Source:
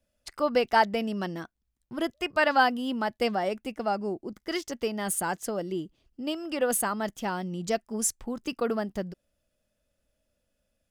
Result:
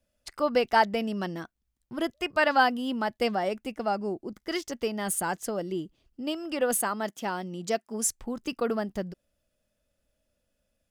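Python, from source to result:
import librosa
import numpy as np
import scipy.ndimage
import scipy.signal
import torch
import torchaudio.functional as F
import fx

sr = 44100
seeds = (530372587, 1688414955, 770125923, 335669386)

y = fx.highpass(x, sr, hz=200.0, slope=12, at=(6.82, 8.06))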